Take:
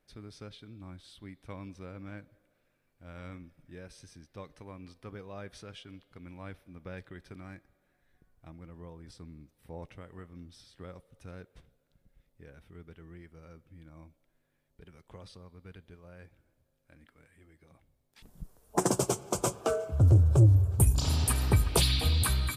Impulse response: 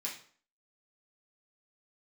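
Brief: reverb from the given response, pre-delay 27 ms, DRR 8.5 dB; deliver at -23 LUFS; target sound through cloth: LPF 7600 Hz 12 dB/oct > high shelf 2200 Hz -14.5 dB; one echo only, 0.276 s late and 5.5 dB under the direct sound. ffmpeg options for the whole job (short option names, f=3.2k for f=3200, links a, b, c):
-filter_complex "[0:a]aecho=1:1:276:0.531,asplit=2[a][b];[1:a]atrim=start_sample=2205,adelay=27[c];[b][c]afir=irnorm=-1:irlink=0,volume=-9.5dB[d];[a][d]amix=inputs=2:normalize=0,lowpass=7.6k,highshelf=f=2.2k:g=-14.5,volume=2.5dB"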